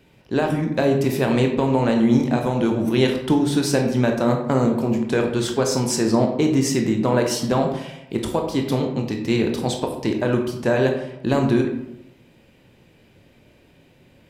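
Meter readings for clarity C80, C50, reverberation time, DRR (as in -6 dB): 8.5 dB, 6.0 dB, 0.85 s, 2.5 dB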